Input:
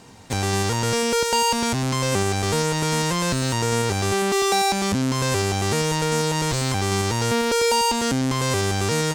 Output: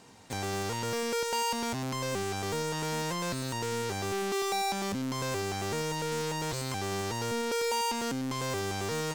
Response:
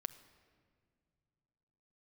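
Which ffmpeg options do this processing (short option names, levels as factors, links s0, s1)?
-af "lowshelf=f=130:g=-8.5,asoftclip=type=tanh:threshold=0.119,volume=0.447"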